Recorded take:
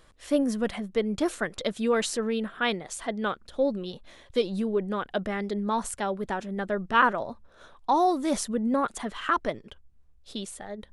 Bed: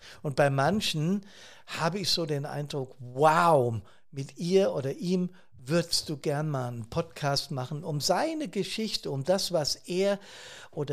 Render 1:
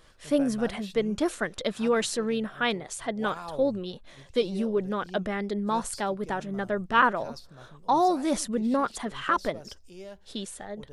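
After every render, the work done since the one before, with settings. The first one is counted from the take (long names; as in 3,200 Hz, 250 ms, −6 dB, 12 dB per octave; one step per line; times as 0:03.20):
mix in bed −17 dB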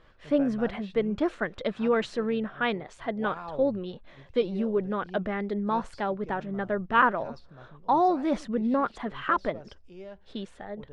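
low-pass filter 2,600 Hz 12 dB per octave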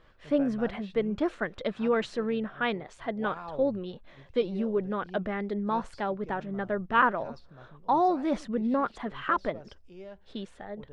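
level −1.5 dB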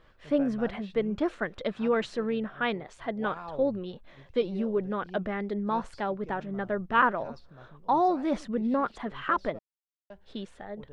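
0:09.59–0:10.10: silence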